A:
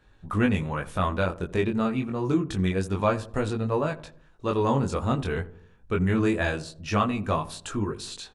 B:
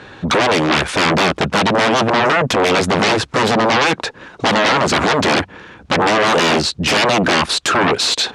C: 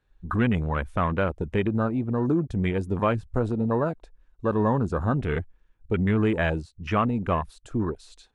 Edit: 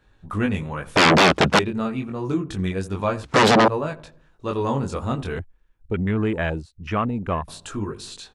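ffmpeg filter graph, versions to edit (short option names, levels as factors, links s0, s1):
-filter_complex "[1:a]asplit=2[s0][s1];[0:a]asplit=4[s2][s3][s4][s5];[s2]atrim=end=0.962[s6];[s0]atrim=start=0.958:end=1.592[s7];[s3]atrim=start=1.588:end=3.242[s8];[s1]atrim=start=3.238:end=3.682[s9];[s4]atrim=start=3.678:end=5.392[s10];[2:a]atrim=start=5.388:end=7.482[s11];[s5]atrim=start=7.478[s12];[s6][s7]acrossfade=d=0.004:c1=hsin:c2=hsin[s13];[s13][s8]acrossfade=d=0.004:c1=hsin:c2=hsin[s14];[s14][s9]acrossfade=d=0.004:c1=hsin:c2=hsin[s15];[s15][s10]acrossfade=d=0.004:c1=hsin:c2=hsin[s16];[s16][s11]acrossfade=d=0.004:c1=hsin:c2=hsin[s17];[s17][s12]acrossfade=d=0.004:c1=hsin:c2=hsin"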